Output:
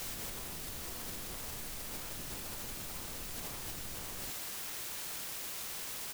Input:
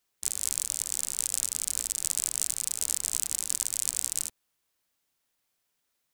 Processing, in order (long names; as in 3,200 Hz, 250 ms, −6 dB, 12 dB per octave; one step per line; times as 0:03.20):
peak hold with a rise ahead of every peak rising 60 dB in 1.03 s
Chebyshev low-pass filter 1,200 Hz, order 3
automatic gain control gain up to 5.5 dB
backwards echo 101 ms −5 dB
downward compressor 8 to 1, threshold −51 dBFS, peak gain reduction 11 dB
sample-and-hold swept by an LFO 27×, swing 160% 1.9 Hz
pitch-shifted copies added −12 semitones −2 dB, −4 semitones −9 dB
bit-depth reduction 8 bits, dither triangular
brickwall limiter −39.5 dBFS, peak gain reduction 3.5 dB
level +6.5 dB